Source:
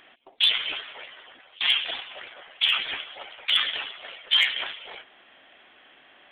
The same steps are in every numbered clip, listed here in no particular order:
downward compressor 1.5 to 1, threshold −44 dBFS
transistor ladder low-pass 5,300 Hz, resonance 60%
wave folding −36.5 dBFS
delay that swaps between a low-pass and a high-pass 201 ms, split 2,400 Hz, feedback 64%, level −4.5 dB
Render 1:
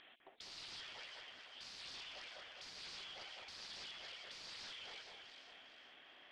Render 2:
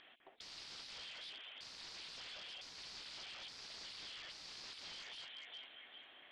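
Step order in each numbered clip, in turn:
wave folding, then delay that swaps between a low-pass and a high-pass, then downward compressor, then transistor ladder low-pass
delay that swaps between a low-pass and a high-pass, then wave folding, then downward compressor, then transistor ladder low-pass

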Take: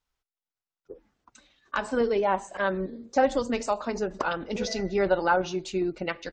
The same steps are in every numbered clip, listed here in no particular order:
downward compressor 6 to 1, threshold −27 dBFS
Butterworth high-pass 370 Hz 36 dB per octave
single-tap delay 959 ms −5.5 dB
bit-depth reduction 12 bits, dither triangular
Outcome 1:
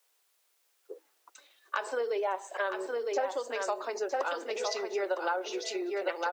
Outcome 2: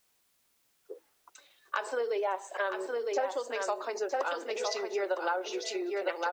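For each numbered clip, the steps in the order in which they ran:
single-tap delay, then downward compressor, then bit-depth reduction, then Butterworth high-pass
single-tap delay, then downward compressor, then Butterworth high-pass, then bit-depth reduction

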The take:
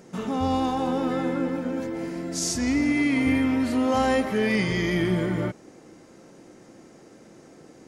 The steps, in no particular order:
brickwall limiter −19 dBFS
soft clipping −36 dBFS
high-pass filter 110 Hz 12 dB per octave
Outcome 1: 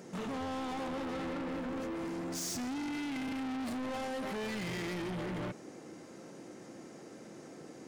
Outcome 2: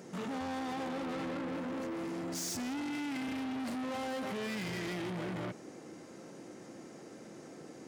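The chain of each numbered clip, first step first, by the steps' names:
high-pass filter, then brickwall limiter, then soft clipping
brickwall limiter, then soft clipping, then high-pass filter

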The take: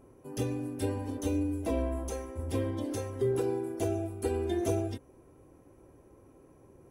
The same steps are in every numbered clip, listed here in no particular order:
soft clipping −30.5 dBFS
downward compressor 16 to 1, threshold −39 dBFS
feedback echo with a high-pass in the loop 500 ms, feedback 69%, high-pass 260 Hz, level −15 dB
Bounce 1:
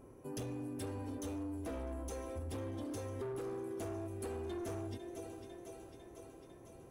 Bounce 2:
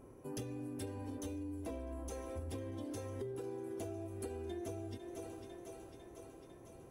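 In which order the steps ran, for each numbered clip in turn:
feedback echo with a high-pass in the loop, then soft clipping, then downward compressor
feedback echo with a high-pass in the loop, then downward compressor, then soft clipping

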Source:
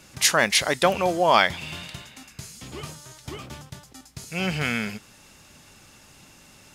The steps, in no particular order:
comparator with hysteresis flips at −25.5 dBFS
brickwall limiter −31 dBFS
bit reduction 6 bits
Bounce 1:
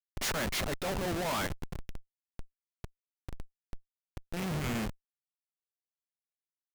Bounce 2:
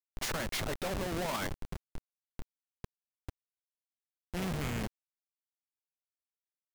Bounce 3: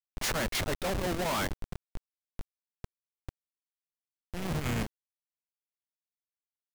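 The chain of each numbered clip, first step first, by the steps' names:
bit reduction, then comparator with hysteresis, then brickwall limiter
comparator with hysteresis, then bit reduction, then brickwall limiter
comparator with hysteresis, then brickwall limiter, then bit reduction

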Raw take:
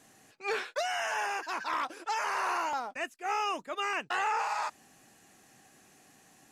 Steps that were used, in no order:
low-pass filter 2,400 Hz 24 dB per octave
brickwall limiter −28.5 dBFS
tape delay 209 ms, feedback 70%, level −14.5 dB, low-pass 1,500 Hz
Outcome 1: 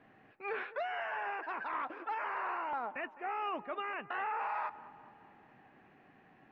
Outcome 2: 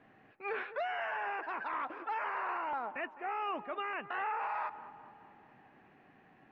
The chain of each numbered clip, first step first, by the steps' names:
brickwall limiter, then tape delay, then low-pass filter
tape delay, then low-pass filter, then brickwall limiter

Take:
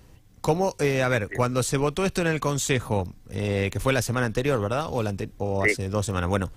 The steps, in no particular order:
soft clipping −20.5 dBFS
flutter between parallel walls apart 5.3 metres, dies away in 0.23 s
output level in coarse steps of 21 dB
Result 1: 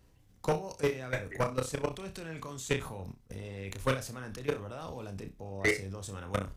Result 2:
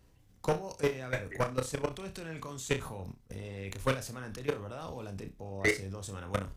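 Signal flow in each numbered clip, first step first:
output level in coarse steps, then flutter between parallel walls, then soft clipping
output level in coarse steps, then soft clipping, then flutter between parallel walls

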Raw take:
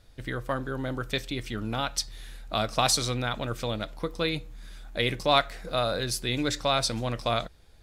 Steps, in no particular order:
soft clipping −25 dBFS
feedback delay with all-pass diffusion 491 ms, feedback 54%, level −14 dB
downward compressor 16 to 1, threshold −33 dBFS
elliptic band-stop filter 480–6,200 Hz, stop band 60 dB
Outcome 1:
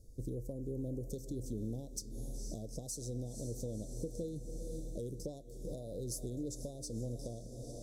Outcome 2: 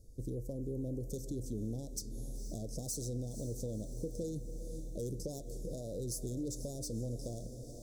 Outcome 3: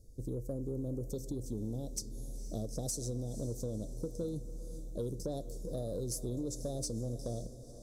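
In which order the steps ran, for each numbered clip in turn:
feedback delay with all-pass diffusion, then downward compressor, then soft clipping, then elliptic band-stop filter
soft clipping, then feedback delay with all-pass diffusion, then downward compressor, then elliptic band-stop filter
elliptic band-stop filter, then downward compressor, then soft clipping, then feedback delay with all-pass diffusion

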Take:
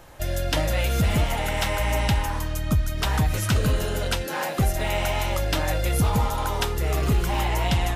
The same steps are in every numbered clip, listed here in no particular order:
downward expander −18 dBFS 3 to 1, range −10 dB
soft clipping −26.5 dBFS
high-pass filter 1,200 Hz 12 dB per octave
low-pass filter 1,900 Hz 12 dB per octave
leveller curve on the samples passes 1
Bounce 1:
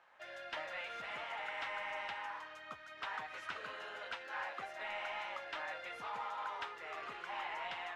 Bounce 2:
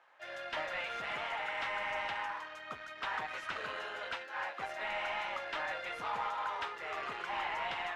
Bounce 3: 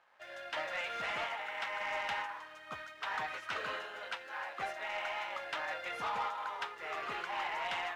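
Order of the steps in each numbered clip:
high-pass filter, then downward expander, then soft clipping, then leveller curve on the samples, then low-pass filter
leveller curve on the samples, then downward expander, then high-pass filter, then soft clipping, then low-pass filter
low-pass filter, then downward expander, then high-pass filter, then leveller curve on the samples, then soft clipping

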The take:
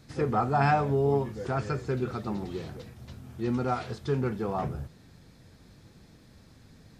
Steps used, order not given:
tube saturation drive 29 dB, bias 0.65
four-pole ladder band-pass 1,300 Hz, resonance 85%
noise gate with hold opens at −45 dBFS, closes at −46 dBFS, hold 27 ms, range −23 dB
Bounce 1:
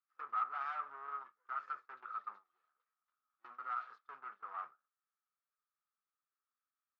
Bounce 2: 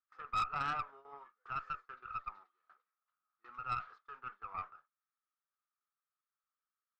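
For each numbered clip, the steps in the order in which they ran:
tube saturation, then four-pole ladder band-pass, then noise gate with hold
four-pole ladder band-pass, then noise gate with hold, then tube saturation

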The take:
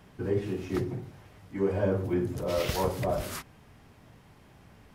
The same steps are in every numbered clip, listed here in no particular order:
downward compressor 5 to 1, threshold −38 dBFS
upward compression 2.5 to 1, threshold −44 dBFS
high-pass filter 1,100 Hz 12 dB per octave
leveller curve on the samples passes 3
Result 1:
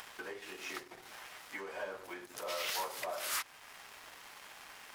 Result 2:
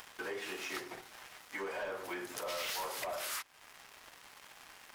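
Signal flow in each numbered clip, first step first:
downward compressor, then high-pass filter, then leveller curve on the samples, then upward compression
high-pass filter, then leveller curve on the samples, then downward compressor, then upward compression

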